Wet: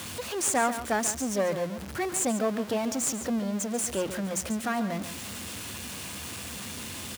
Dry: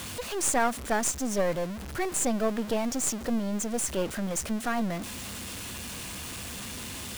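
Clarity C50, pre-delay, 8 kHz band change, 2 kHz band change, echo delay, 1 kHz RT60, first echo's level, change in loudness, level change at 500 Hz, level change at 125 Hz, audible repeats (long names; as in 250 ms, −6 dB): no reverb audible, no reverb audible, +0.5 dB, +0.5 dB, 140 ms, no reverb audible, −11.5 dB, 0.0 dB, +0.5 dB, −0.5 dB, 1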